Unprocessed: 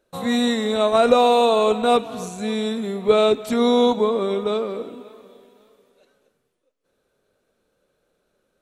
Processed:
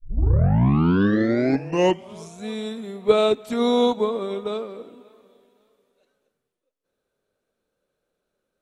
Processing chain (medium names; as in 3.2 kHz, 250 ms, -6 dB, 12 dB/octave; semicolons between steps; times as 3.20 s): tape start-up on the opening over 2.45 s; upward expansion 1.5:1, over -28 dBFS